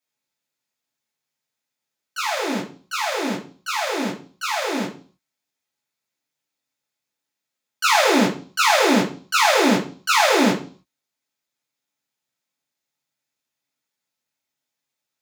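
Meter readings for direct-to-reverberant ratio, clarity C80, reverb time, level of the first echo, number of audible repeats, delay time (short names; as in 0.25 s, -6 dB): -9.5 dB, 14.0 dB, 0.40 s, none, none, none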